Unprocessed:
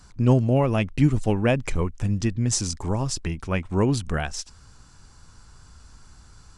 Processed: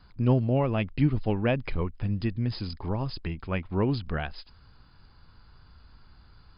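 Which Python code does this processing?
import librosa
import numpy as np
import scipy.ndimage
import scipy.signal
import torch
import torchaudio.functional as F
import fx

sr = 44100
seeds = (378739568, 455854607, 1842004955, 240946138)

y = fx.brickwall_lowpass(x, sr, high_hz=5100.0)
y = y * librosa.db_to_amplitude(-4.5)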